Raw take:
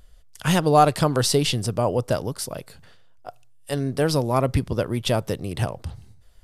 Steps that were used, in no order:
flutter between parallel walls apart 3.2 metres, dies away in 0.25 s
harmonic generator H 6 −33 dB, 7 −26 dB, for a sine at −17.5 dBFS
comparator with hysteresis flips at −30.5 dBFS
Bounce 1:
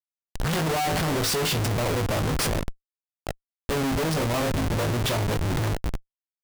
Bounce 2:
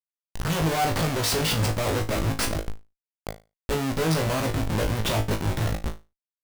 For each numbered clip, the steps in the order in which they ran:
flutter between parallel walls, then harmonic generator, then comparator with hysteresis
harmonic generator, then comparator with hysteresis, then flutter between parallel walls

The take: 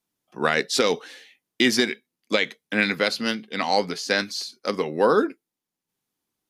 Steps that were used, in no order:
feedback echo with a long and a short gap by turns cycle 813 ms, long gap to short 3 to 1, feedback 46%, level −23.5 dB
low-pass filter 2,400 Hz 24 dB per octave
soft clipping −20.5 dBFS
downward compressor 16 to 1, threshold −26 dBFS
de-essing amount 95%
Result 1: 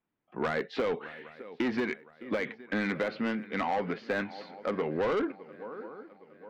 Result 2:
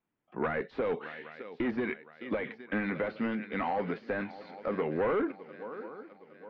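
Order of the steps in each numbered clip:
low-pass filter, then de-essing, then feedback echo with a long and a short gap by turns, then soft clipping, then downward compressor
feedback echo with a long and a short gap by turns, then soft clipping, then downward compressor, then de-essing, then low-pass filter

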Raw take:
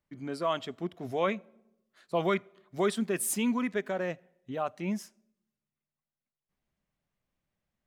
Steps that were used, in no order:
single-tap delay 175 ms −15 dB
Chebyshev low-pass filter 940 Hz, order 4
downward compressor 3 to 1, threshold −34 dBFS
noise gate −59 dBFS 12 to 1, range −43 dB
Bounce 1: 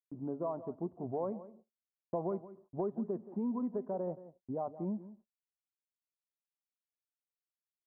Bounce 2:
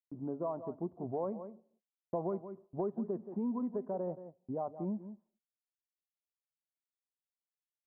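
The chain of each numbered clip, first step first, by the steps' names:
Chebyshev low-pass filter, then downward compressor, then single-tap delay, then noise gate
Chebyshev low-pass filter, then noise gate, then single-tap delay, then downward compressor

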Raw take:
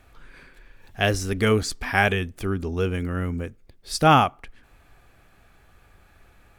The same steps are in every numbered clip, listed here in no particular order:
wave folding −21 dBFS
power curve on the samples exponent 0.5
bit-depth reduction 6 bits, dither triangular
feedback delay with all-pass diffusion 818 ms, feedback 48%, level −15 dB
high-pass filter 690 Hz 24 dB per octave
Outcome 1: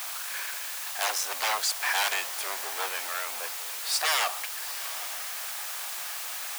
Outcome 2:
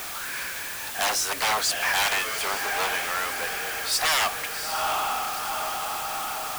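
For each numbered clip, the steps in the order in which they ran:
wave folding, then power curve on the samples, then feedback delay with all-pass diffusion, then bit-depth reduction, then high-pass filter
feedback delay with all-pass diffusion, then wave folding, then high-pass filter, then power curve on the samples, then bit-depth reduction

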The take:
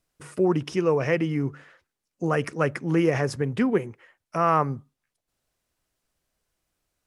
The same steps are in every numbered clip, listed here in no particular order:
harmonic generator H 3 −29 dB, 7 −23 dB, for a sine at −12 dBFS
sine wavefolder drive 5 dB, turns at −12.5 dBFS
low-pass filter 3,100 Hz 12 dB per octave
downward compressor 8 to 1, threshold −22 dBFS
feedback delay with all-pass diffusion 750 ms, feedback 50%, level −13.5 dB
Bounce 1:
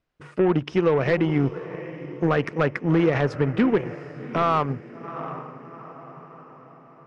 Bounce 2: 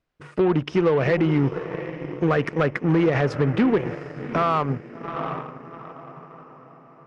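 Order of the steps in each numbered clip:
feedback delay with all-pass diffusion, then harmonic generator, then downward compressor, then sine wavefolder, then low-pass filter
feedback delay with all-pass diffusion, then downward compressor, then sine wavefolder, then harmonic generator, then low-pass filter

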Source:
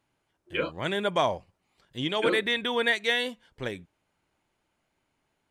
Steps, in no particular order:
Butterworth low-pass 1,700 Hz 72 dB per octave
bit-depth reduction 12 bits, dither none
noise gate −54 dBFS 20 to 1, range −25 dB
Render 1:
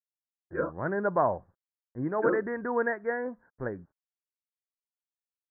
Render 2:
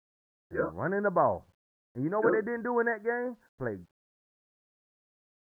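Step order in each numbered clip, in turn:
noise gate, then bit-depth reduction, then Butterworth low-pass
Butterworth low-pass, then noise gate, then bit-depth reduction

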